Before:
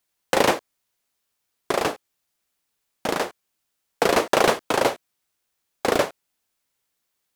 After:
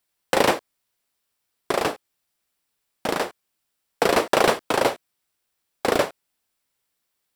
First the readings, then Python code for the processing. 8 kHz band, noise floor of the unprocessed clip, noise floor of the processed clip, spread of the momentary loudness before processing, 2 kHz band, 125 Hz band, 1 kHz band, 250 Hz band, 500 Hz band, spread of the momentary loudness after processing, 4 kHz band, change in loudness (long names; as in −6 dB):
−1.0 dB, −77 dBFS, −77 dBFS, 11 LU, 0.0 dB, 0.0 dB, 0.0 dB, 0.0 dB, 0.0 dB, 11 LU, 0.0 dB, 0.0 dB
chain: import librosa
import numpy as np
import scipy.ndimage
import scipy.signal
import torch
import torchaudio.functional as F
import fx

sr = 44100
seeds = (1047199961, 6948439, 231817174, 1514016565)

y = fx.notch(x, sr, hz=6500.0, q=12.0)